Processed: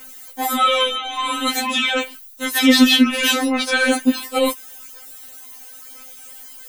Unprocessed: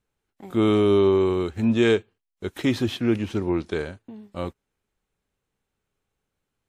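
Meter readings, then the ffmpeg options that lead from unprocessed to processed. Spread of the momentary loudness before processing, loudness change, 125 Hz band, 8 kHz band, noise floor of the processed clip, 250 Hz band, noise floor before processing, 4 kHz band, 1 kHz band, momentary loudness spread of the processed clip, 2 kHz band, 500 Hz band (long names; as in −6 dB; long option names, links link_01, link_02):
17 LU, +5.0 dB, below −20 dB, +21.5 dB, −41 dBFS, +5.0 dB, −82 dBFS, +17.5 dB, +13.5 dB, 23 LU, +14.5 dB, −2.0 dB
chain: -filter_complex "[0:a]acrossover=split=4200[link_01][link_02];[link_02]acompressor=threshold=-56dB:ratio=4:attack=1:release=60[link_03];[link_01][link_03]amix=inputs=2:normalize=0,aemphasis=mode=production:type=riaa,areverse,acompressor=threshold=-37dB:ratio=8,areverse,aphaser=in_gain=1:out_gain=1:delay=2.9:decay=0.48:speed=1:type=sinusoidal,alimiter=level_in=35dB:limit=-1dB:release=50:level=0:latency=1,afftfilt=real='re*3.46*eq(mod(b,12),0)':imag='im*3.46*eq(mod(b,12),0)':win_size=2048:overlap=0.75,volume=-1dB"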